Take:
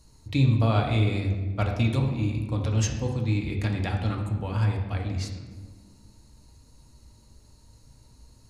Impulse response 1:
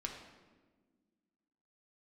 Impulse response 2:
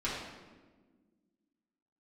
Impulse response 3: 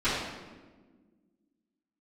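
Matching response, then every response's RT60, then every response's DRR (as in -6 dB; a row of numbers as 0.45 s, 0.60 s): 1; 1.5 s, 1.4 s, 1.4 s; 0.5 dB, -9.0 dB, -18.0 dB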